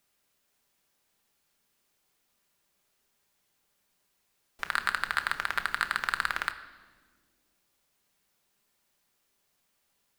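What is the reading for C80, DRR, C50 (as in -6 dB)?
14.5 dB, 7.0 dB, 13.0 dB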